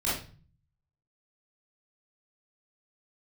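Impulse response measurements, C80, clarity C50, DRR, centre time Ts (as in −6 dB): 8.0 dB, 1.5 dB, −10.0 dB, 50 ms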